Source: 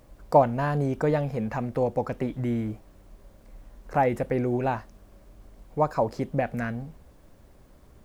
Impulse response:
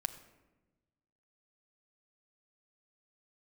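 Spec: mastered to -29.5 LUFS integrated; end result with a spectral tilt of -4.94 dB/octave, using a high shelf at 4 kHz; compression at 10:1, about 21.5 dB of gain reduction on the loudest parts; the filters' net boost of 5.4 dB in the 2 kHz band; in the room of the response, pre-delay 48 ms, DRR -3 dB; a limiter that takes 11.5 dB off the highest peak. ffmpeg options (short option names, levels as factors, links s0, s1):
-filter_complex "[0:a]equalizer=f=2000:t=o:g=6,highshelf=f=4000:g=5,acompressor=threshold=0.02:ratio=10,alimiter=level_in=2.66:limit=0.0631:level=0:latency=1,volume=0.376,asplit=2[s0][s1];[1:a]atrim=start_sample=2205,adelay=48[s2];[s1][s2]afir=irnorm=-1:irlink=0,volume=1.41[s3];[s0][s3]amix=inputs=2:normalize=0,volume=2.66"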